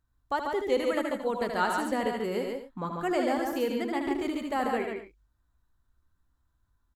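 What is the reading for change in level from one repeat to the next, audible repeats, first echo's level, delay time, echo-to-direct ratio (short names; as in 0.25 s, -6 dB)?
no steady repeat, 3, -5.5 dB, 77 ms, -1.5 dB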